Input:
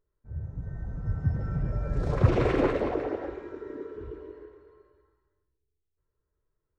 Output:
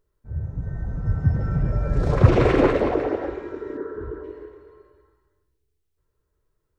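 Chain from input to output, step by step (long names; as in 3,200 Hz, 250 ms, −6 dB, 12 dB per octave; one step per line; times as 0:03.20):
0:03.77–0:04.24: high shelf with overshoot 2,000 Hz −7.5 dB, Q 3
level +7 dB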